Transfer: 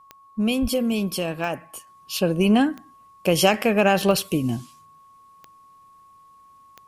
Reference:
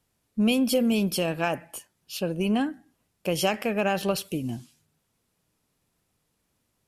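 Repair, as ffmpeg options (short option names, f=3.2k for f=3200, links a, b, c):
-filter_complex "[0:a]adeclick=t=4,bandreject=f=1.1k:w=30,asplit=3[a][b][c];[a]afade=t=out:st=0.61:d=0.02[d];[b]highpass=f=140:w=0.5412,highpass=f=140:w=1.3066,afade=t=in:st=0.61:d=0.02,afade=t=out:st=0.73:d=0.02[e];[c]afade=t=in:st=0.73:d=0.02[f];[d][e][f]amix=inputs=3:normalize=0,asetnsamples=n=441:p=0,asendcmd='1.87 volume volume -7dB',volume=0dB"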